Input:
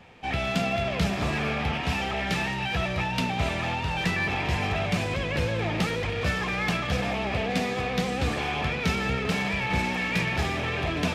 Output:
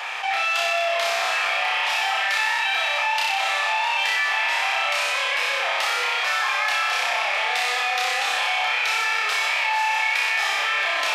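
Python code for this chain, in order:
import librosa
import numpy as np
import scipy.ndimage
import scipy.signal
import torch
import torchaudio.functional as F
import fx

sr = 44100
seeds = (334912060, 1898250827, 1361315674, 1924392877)

p1 = scipy.signal.sosfilt(scipy.signal.butter(4, 780.0, 'highpass', fs=sr, output='sos'), x)
p2 = p1 + fx.room_flutter(p1, sr, wall_m=5.3, rt60_s=0.92, dry=0)
p3 = fx.env_flatten(p2, sr, amount_pct=70)
y = p3 * 10.0 ** (1.5 / 20.0)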